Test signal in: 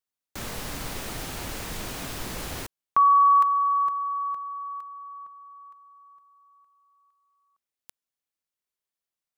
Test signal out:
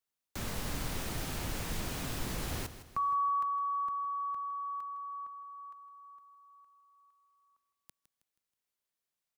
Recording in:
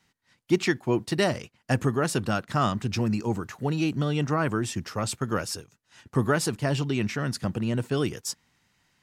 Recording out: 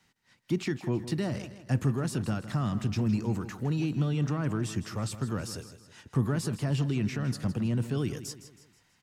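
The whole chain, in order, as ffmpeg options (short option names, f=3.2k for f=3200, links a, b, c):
-filter_complex "[0:a]acrossover=split=250[a][b];[b]acompressor=threshold=-37dB:ratio=2.5:attack=0.15:release=47:knee=2.83:detection=peak[c];[a][c]amix=inputs=2:normalize=0,aecho=1:1:160|320|480|640:0.224|0.0963|0.0414|0.0178"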